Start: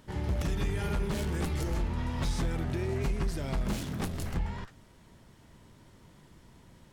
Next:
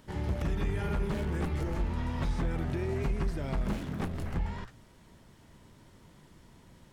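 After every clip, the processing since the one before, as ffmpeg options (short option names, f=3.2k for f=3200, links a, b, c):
-filter_complex "[0:a]bandreject=f=60:t=h:w=6,bandreject=f=120:t=h:w=6,acrossover=split=2700[a][b];[b]acompressor=threshold=-55dB:ratio=6[c];[a][c]amix=inputs=2:normalize=0"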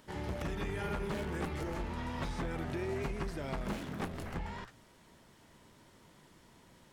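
-af "lowshelf=f=190:g=-10.5"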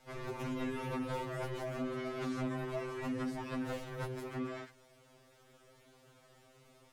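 -af "bandreject=f=60:t=h:w=6,bandreject=f=120:t=h:w=6,bandreject=f=180:t=h:w=6,aeval=exprs='val(0)*sin(2*PI*300*n/s)':c=same,afftfilt=real='re*2.45*eq(mod(b,6),0)':imag='im*2.45*eq(mod(b,6),0)':win_size=2048:overlap=0.75,volume=3dB"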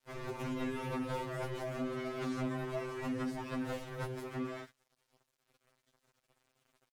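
-af "aeval=exprs='sgn(val(0))*max(abs(val(0))-0.00112,0)':c=same,volume=1dB"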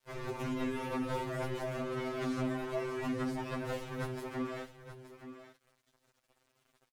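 -af "flanger=delay=1.8:depth=1.9:regen=-73:speed=0.56:shape=triangular,aecho=1:1:873:0.251,volume=6dB"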